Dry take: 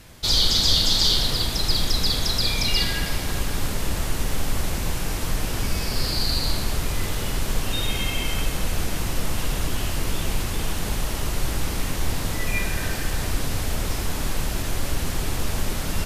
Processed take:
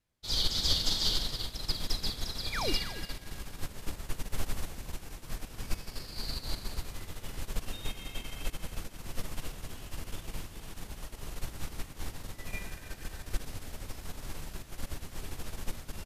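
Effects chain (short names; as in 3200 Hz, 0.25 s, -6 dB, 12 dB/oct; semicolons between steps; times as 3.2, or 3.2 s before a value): painted sound fall, 2.52–2.73, 250–2600 Hz -23 dBFS; echo 0.288 s -8 dB; upward expander 2.5:1, over -34 dBFS; gain -7 dB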